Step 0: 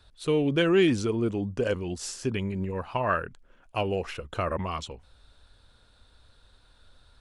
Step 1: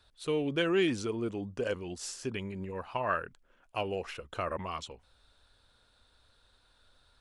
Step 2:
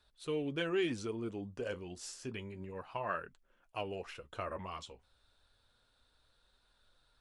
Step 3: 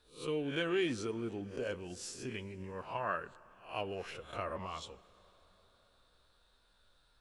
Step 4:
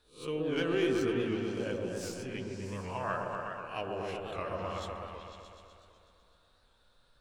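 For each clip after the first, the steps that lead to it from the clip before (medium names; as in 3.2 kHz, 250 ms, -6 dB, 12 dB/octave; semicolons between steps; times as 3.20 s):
bass shelf 260 Hz -7 dB; trim -4 dB
flange 0.3 Hz, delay 4.7 ms, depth 6.4 ms, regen -54%; trim -2 dB
reverse spectral sustain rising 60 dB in 0.37 s; plate-style reverb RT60 4.8 s, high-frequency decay 0.7×, DRR 19.5 dB
tracing distortion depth 0.021 ms; delay with an opening low-pass 125 ms, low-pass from 750 Hz, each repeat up 1 oct, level 0 dB; warped record 78 rpm, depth 100 cents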